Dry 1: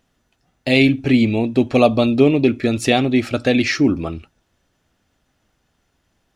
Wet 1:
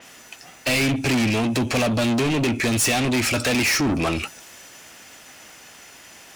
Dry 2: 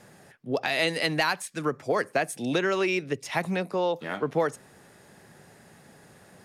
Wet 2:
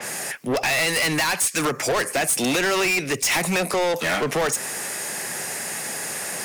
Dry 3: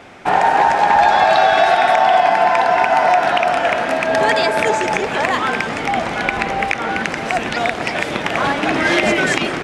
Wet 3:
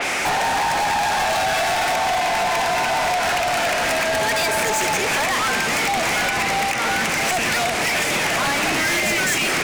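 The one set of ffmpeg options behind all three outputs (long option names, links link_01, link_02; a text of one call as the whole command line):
ffmpeg -i in.wav -filter_complex "[0:a]aexciter=amount=1.5:drive=5.8:freq=2000,acrossover=split=170[link_01][link_02];[link_02]acompressor=threshold=-30dB:ratio=4[link_03];[link_01][link_03]amix=inputs=2:normalize=0,asplit=2[link_04][link_05];[link_05]highpass=frequency=720:poles=1,volume=31dB,asoftclip=type=tanh:threshold=-12.5dB[link_06];[link_04][link_06]amix=inputs=2:normalize=0,lowpass=frequency=6800:poles=1,volume=-6dB,adynamicequalizer=threshold=0.0141:dfrequency=5300:dqfactor=0.7:tfrequency=5300:tqfactor=0.7:attack=5:release=100:ratio=0.375:range=2.5:mode=boostabove:tftype=highshelf,volume=-1.5dB" out.wav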